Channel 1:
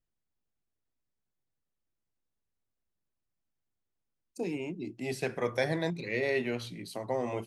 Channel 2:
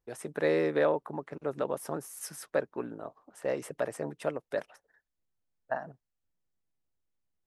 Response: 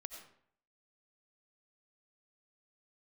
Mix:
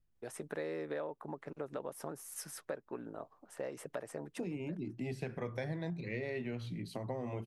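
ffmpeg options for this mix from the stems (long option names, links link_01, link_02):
-filter_complex "[0:a]bass=frequency=250:gain=10,treble=frequency=4000:gain=-7,volume=0dB,asplit=2[link_01][link_02];[1:a]adelay=150,volume=-3dB[link_03];[link_02]apad=whole_len=335818[link_04];[link_03][link_04]sidechaincompress=threshold=-44dB:ratio=6:attack=16:release=220[link_05];[link_01][link_05]amix=inputs=2:normalize=0,acompressor=threshold=-38dB:ratio=4"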